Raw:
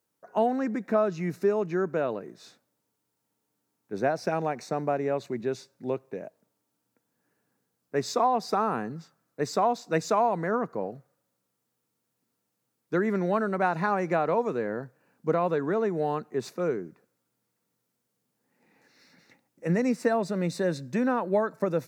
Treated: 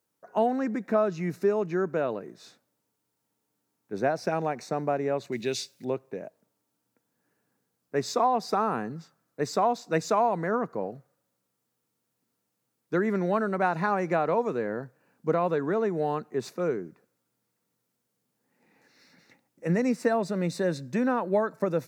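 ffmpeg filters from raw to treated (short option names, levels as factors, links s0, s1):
-filter_complex "[0:a]asettb=1/sr,asplit=3[s0][s1][s2];[s0]atrim=end=5.324[s3];[s1]atrim=start=5.32:end=5.85,asetpts=PTS-STARTPTS,afade=t=in:d=0.004:c=qsin,afade=t=out:st=0.526:d=0.004:c=qsin,highshelf=f=1900:t=q:w=1.5:g=12[s4];[s2]atrim=start=5.846[s5];[s3][s4]acrossfade=d=0.004:c1=hsin:c2=qsin[s6];[s6][s5]acrossfade=d=0.004:c1=qsin:c2=hsin"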